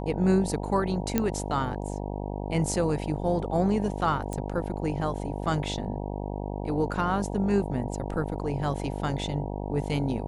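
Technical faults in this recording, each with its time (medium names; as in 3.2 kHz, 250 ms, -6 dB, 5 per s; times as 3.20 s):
buzz 50 Hz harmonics 19 -33 dBFS
1.18 s: pop -10 dBFS
4.33 s: pop -21 dBFS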